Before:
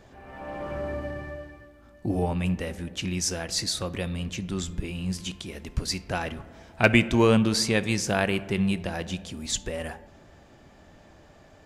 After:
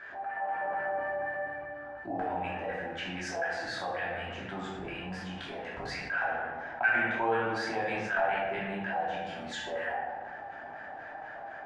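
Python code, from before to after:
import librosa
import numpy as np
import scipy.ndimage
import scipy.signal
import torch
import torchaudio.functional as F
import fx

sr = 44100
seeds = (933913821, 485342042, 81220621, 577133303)

y = fx.high_shelf(x, sr, hz=5000.0, db=-7.0)
y = fx.filter_lfo_bandpass(y, sr, shape='square', hz=4.1, low_hz=790.0, high_hz=1600.0, q=7.4)
y = fx.room_shoebox(y, sr, seeds[0], volume_m3=340.0, walls='mixed', distance_m=2.9)
y = fx.env_flatten(y, sr, amount_pct=50)
y = F.gain(torch.from_numpy(y), -5.0).numpy()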